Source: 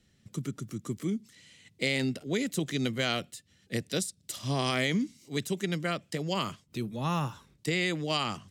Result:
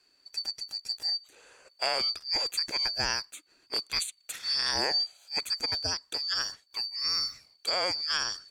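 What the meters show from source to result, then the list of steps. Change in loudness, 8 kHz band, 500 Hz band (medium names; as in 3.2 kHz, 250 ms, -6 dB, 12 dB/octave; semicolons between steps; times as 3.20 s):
+2.5 dB, +2.5 dB, -6.0 dB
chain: four frequency bands reordered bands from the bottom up 2341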